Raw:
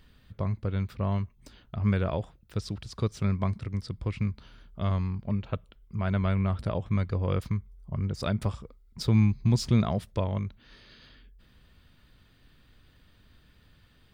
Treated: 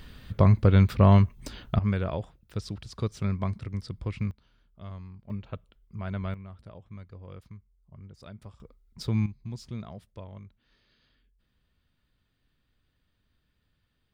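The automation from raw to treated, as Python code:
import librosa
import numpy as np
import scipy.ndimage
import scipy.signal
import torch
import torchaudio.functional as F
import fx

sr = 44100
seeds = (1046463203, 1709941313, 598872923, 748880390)

y = fx.gain(x, sr, db=fx.steps((0.0, 11.0), (1.79, -1.5), (4.31, -13.5), (5.3, -6.0), (6.34, -17.0), (8.6, -4.5), (9.26, -14.5)))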